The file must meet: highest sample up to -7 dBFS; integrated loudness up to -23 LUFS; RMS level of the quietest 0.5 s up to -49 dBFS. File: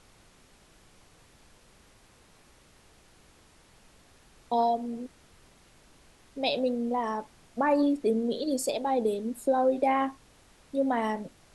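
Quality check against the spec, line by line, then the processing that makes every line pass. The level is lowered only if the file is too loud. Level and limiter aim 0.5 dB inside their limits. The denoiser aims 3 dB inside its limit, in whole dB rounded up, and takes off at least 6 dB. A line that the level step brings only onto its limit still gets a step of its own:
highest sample -13.5 dBFS: OK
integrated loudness -28.5 LUFS: OK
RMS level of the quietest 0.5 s -59 dBFS: OK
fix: none

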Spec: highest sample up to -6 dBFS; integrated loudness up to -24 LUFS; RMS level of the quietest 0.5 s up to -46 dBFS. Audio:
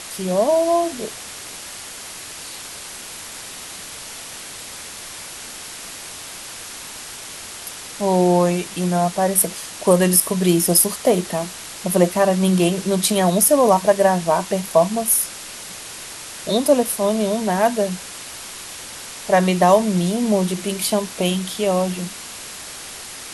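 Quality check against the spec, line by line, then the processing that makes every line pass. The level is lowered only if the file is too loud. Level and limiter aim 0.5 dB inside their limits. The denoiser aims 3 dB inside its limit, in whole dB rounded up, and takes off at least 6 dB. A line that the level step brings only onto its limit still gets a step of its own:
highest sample -1.5 dBFS: fail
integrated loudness -18.5 LUFS: fail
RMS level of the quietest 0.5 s -35 dBFS: fail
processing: denoiser 8 dB, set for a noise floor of -35 dBFS; gain -6 dB

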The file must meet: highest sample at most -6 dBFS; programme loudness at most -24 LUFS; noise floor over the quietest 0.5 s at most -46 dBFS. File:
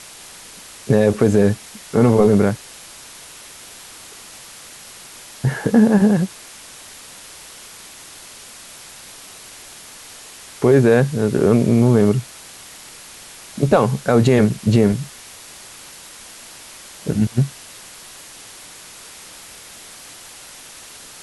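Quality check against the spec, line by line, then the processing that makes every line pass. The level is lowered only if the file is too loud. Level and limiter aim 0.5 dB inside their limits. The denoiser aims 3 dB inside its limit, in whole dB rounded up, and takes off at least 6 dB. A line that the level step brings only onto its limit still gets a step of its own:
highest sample -3.5 dBFS: fail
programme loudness -16.5 LUFS: fail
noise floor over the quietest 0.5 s -40 dBFS: fail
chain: gain -8 dB

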